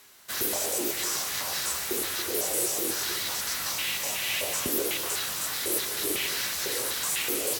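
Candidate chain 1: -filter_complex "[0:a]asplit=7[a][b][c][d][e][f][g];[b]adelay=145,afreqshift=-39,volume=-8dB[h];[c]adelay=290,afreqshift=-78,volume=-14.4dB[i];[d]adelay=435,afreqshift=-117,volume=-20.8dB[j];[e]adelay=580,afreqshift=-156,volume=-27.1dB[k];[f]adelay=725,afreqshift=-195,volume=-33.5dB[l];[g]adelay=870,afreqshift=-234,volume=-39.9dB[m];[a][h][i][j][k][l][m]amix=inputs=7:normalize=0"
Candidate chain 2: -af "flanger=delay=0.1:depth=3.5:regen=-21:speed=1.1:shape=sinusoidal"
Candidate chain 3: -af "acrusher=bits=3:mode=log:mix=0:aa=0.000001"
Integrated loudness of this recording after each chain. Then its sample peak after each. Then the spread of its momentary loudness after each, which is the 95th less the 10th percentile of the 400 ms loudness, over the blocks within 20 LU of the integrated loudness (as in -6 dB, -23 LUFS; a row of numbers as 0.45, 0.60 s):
-26.5, -31.0, -27.0 LUFS; -13.5, -16.5, -11.5 dBFS; 2, 2, 2 LU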